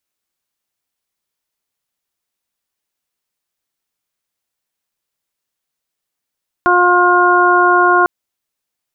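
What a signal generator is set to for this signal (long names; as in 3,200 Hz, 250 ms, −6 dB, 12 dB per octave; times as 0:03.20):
steady harmonic partials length 1.40 s, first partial 356 Hz, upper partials −0.5/2.5/1.5 dB, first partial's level −14.5 dB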